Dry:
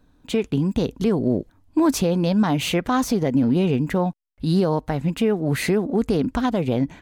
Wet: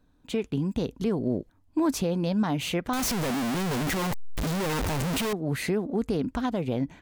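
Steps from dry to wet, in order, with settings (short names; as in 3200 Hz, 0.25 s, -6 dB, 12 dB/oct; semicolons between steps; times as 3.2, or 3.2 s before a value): 2.93–5.33 infinite clipping; gain -6.5 dB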